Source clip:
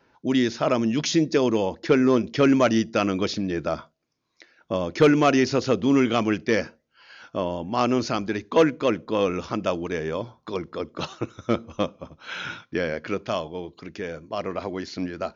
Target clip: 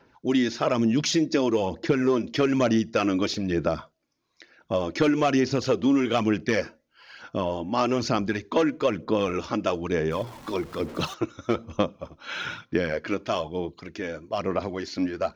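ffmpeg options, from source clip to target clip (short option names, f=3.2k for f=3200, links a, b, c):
-filter_complex "[0:a]asettb=1/sr,asplit=3[a][b][c];[a]atrim=end=10.114[d];[b]atrim=start=10.11:end=11.14,asetpts=PTS-STARTPTS,afade=t=in:d=0.004:c=qsin,afade=t=out:st=1.026:d=0.004:c=qsin,aeval=exprs='val(0)+0.5*0.01*sgn(val(0))':c=same[e];[c]atrim=start=11.136[f];[d][e]acrossfade=d=0.004:c1=hsin:c2=qsin[g];[g][f]acrossfade=d=0.004:c1=qsin:c2=hsin,aphaser=in_gain=1:out_gain=1:delay=3.6:decay=0.43:speed=1.1:type=sinusoidal,acompressor=threshold=-18dB:ratio=6"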